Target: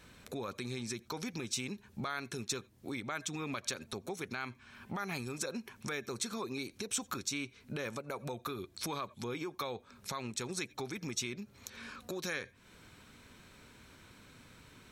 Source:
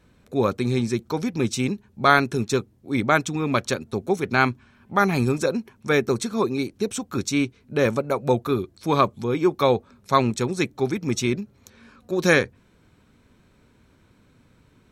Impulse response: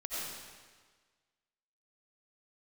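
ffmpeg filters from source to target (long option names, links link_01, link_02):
-filter_complex "[0:a]asplit=2[link_01][link_02];[1:a]atrim=start_sample=2205,atrim=end_sample=3528,asetrate=37926,aresample=44100[link_03];[link_02][link_03]afir=irnorm=-1:irlink=0,volume=-21dB[link_04];[link_01][link_04]amix=inputs=2:normalize=0,acompressor=threshold=-32dB:ratio=6,alimiter=level_in=6dB:limit=-24dB:level=0:latency=1:release=120,volume=-6dB,tiltshelf=frequency=970:gain=-5.5,volume=2.5dB"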